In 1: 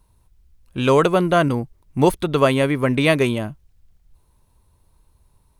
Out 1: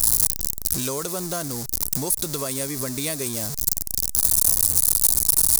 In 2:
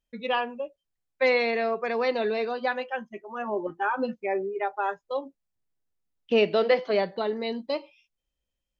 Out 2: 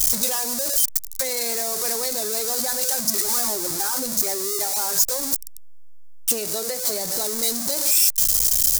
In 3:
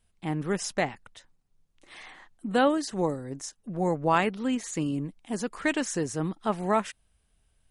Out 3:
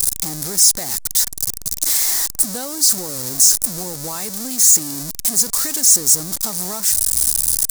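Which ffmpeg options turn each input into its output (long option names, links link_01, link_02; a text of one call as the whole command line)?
ffmpeg -i in.wav -af "aeval=exprs='val(0)+0.5*0.075*sgn(val(0))':channel_layout=same,acompressor=threshold=-24dB:ratio=4,aexciter=amount=10.7:drive=6.3:freq=4400,volume=-5dB" out.wav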